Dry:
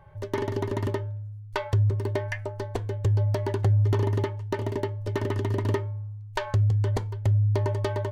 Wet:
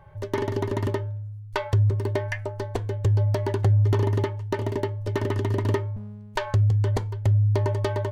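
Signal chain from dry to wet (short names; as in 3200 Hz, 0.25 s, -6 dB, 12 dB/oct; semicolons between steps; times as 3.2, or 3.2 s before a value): 5.96–6.36 minimum comb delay 3.1 ms; gain +2 dB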